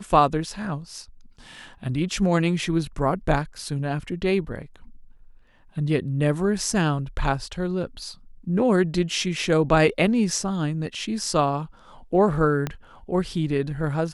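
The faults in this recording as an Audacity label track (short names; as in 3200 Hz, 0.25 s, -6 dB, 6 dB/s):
12.670000	12.670000	pop -13 dBFS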